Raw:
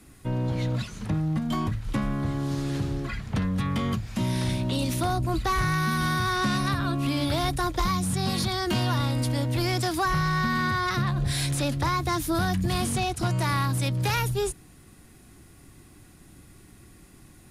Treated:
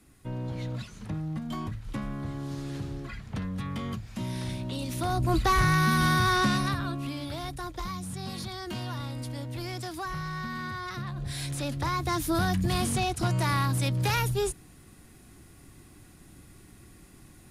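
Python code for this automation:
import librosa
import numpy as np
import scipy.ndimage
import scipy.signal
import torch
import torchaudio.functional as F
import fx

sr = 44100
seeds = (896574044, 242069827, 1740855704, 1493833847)

y = fx.gain(x, sr, db=fx.line((4.88, -7.0), (5.32, 2.0), (6.36, 2.0), (7.22, -10.0), (11.05, -10.0), (12.27, -1.0)))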